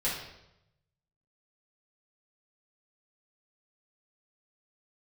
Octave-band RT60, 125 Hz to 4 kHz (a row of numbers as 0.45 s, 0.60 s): 1.4 s, 0.95 s, 0.90 s, 0.80 s, 0.75 s, 0.75 s